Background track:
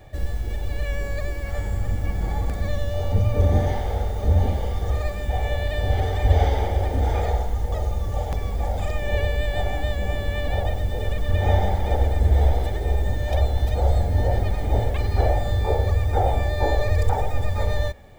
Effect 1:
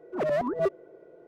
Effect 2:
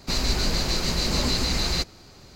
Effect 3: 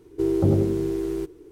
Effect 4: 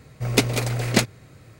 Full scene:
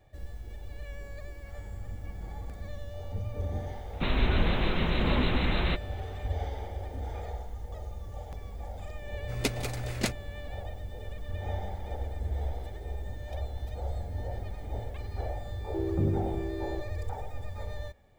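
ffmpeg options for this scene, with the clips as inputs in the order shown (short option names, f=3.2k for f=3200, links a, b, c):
-filter_complex "[0:a]volume=-15dB[a];[2:a]aresample=8000,aresample=44100[b];[4:a]highpass=60[c];[3:a]bass=f=250:g=4,treble=f=4k:g=-13[d];[b]atrim=end=2.35,asetpts=PTS-STARTPTS,volume=-0.5dB,afade=t=in:d=0.004:c=hsin,afade=t=out:st=2.346:d=0.004:c=hsin,adelay=173313S[e];[c]atrim=end=1.59,asetpts=PTS-STARTPTS,volume=-11dB,afade=t=in:d=0.004:c=hsin,afade=t=out:st=1.586:d=0.004:c=hsin,adelay=9070[f];[d]atrim=end=1.51,asetpts=PTS-STARTPTS,volume=-11dB,afade=t=in:d=0.004:c=hsin,afade=t=out:st=1.506:d=0.004:c=hsin,adelay=15550[g];[a][e][f][g]amix=inputs=4:normalize=0"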